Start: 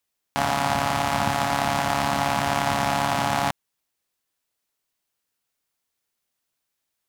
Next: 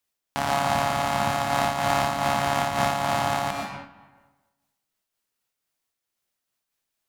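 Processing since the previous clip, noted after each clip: on a send at -4 dB: reverberation RT60 1.2 s, pre-delay 95 ms; on the sum: random flutter of the level, depth 60%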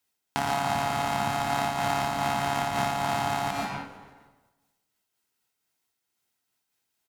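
comb of notches 580 Hz; frequency-shifting echo 155 ms, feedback 57%, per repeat -100 Hz, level -22.5 dB; compression 2.5:1, threshold -29 dBFS, peak gain reduction 7.5 dB; trim +3.5 dB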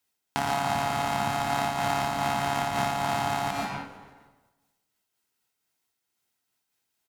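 no audible change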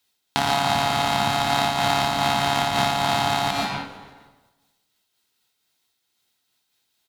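peaking EQ 3.8 kHz +9 dB 0.7 oct; trim +5 dB

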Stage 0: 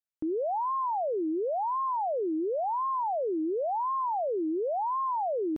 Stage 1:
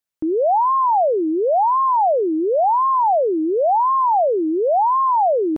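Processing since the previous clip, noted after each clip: dynamic bell 760 Hz, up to +6 dB, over -44 dBFS, Q 0.81; trim +8 dB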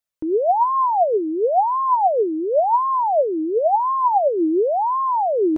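flange 0.4 Hz, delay 1.4 ms, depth 3.5 ms, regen +52%; trim +3 dB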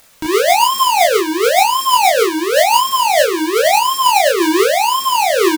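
square wave that keeps the level; upward compressor, threshold -25 dBFS; early reflections 23 ms -4 dB, 36 ms -4 dB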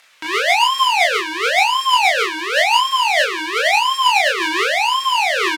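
band-pass filter 2.2 kHz, Q 1.1; trim +4 dB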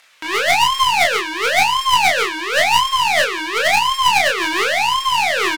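tracing distortion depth 0.056 ms

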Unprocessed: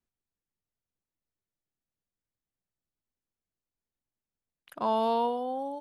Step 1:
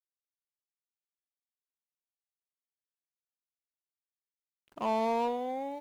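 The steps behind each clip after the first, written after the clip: median filter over 25 samples; bit crusher 11-bit; trim -1.5 dB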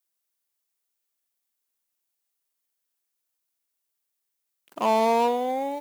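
high-pass 210 Hz; treble shelf 7.3 kHz +10 dB; trim +8.5 dB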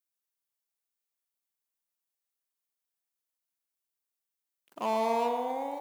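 band-passed feedback delay 115 ms, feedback 68%, band-pass 1 kHz, level -6 dB; trim -8 dB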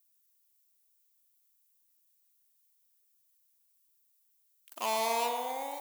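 tilt EQ +4.5 dB/octave; trim -1 dB

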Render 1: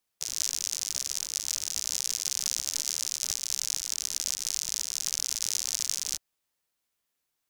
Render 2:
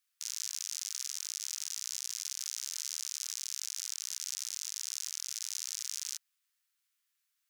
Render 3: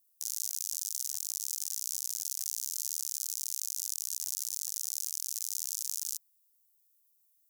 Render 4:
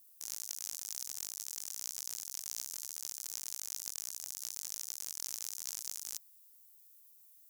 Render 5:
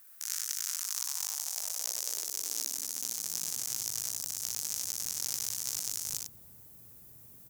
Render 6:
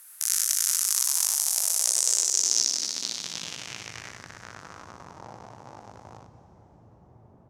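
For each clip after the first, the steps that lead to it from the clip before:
inverse Chebyshev high-pass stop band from 620 Hz, stop band 40 dB; peak limiter -18 dBFS, peak gain reduction 11 dB
FFT filter 570 Hz 0 dB, 1.8 kHz -18 dB, 15 kHz +14 dB
compressor with a negative ratio -42 dBFS, ratio -0.5; overload inside the chain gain 25 dB; trim +3 dB
added noise brown -64 dBFS; high-pass sweep 1.5 kHz -> 110 Hz, 0.60–3.84 s; loudspeakers at several distances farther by 21 m -5 dB, 33 m -6 dB; trim +5 dB
reverberation RT60 3.6 s, pre-delay 98 ms, DRR 12.5 dB; low-pass sweep 11 kHz -> 860 Hz, 1.69–5.32 s; trim +7.5 dB

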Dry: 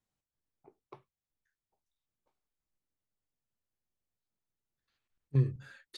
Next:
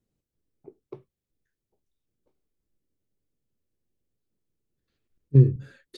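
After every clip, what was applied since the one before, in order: resonant low shelf 600 Hz +11 dB, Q 1.5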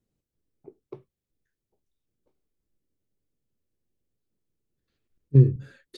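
no audible change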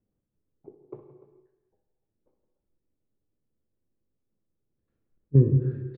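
low-pass 1.2 kHz 12 dB/octave; on a send: multi-tap echo 62/168/295 ms -12/-15.5/-16 dB; on the sum: gated-style reverb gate 490 ms falling, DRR 6 dB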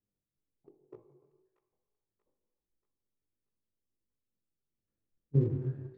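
chorus 2 Hz, delay 18 ms, depth 4.9 ms; in parallel at -5 dB: crossover distortion -41 dBFS; on the sum: feedback echo behind a high-pass 634 ms, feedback 45%, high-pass 1.4 kHz, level -10 dB; trim -8.5 dB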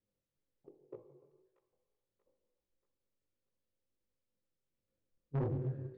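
peaking EQ 530 Hz +11.5 dB 0.27 oct; saturation -30.5 dBFS, distortion -6 dB; distance through air 71 m

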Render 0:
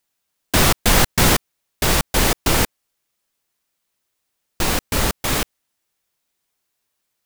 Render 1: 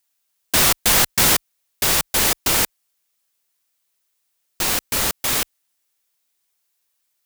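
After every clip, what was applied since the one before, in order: tilt EQ +2 dB/octave; trim -3 dB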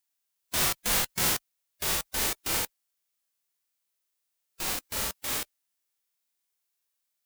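harmonic-percussive split percussive -17 dB; trim -4.5 dB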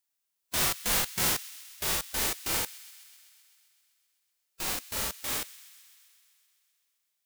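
feedback echo behind a high-pass 129 ms, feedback 73%, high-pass 2.1 kHz, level -18 dB; trim -1 dB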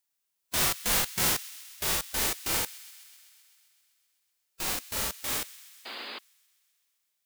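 painted sound noise, 5.85–6.19 s, 210–5000 Hz -41 dBFS; trim +1 dB

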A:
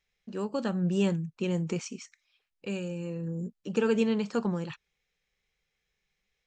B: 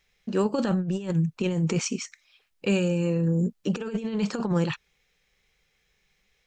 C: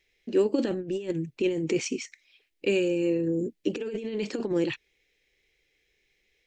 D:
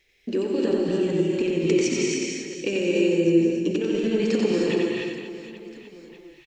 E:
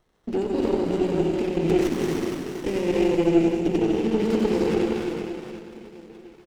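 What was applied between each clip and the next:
compressor with a negative ratio -31 dBFS, ratio -0.5; trim +7.5 dB
FFT filter 130 Hz 0 dB, 180 Hz -8 dB, 310 Hz +13 dB, 880 Hz -4 dB, 1.3 kHz -7 dB, 2 kHz +7 dB, 6.5 kHz +1 dB; trim -5.5 dB
compression, threshold -29 dBFS, peak gain reduction 10.5 dB; on a send: reverse bouncing-ball echo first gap 90 ms, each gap 1.6×, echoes 5; on the sum: gated-style reverb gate 330 ms rising, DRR -0.5 dB; trim +5.5 dB
delay 471 ms -8.5 dB; sliding maximum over 17 samples

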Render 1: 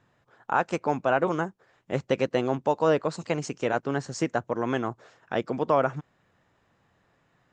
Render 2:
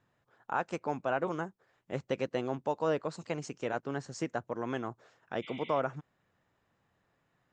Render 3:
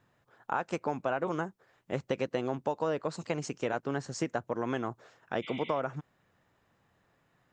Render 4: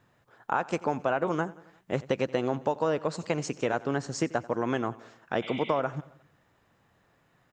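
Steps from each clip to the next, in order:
spectral replace 5.45–5.78 s, 1.9–4.3 kHz before; trim -8 dB
compression, threshold -31 dBFS, peak gain reduction 6.5 dB; trim +4.5 dB
feedback delay 89 ms, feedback 57%, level -20.5 dB; trim +4 dB

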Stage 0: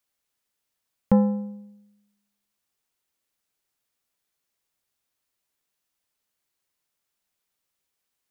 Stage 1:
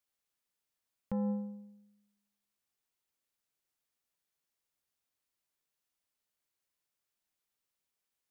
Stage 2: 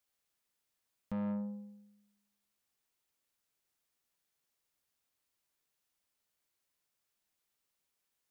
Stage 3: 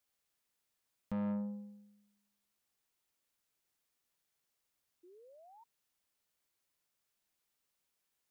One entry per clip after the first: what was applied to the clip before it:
peak limiter -19.5 dBFS, peak gain reduction 12 dB; trim -7 dB
saturation -36 dBFS, distortion -10 dB; trim +3 dB
painted sound rise, 5.03–5.64 s, 340–950 Hz -59 dBFS

